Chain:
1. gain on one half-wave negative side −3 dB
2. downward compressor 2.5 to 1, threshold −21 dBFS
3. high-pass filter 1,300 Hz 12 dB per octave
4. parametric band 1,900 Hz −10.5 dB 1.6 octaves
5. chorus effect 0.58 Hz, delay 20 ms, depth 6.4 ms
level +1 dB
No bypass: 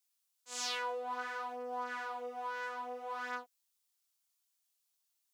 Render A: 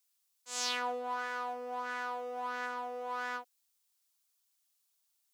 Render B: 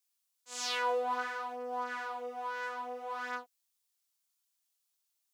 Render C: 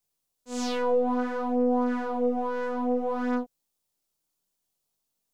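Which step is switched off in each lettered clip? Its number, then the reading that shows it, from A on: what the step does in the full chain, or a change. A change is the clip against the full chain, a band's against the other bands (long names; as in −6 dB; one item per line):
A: 5, change in crest factor +2.0 dB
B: 2, change in integrated loudness +3.5 LU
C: 3, 250 Hz band +24.0 dB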